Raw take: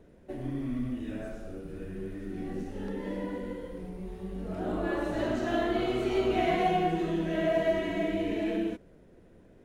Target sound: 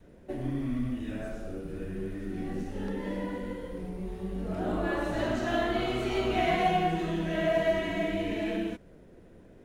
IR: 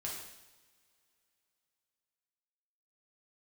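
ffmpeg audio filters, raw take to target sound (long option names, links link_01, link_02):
-af "adynamicequalizer=threshold=0.00891:dfrequency=380:dqfactor=1.1:tfrequency=380:tqfactor=1.1:attack=5:release=100:ratio=0.375:range=3:mode=cutabove:tftype=bell,volume=3dB"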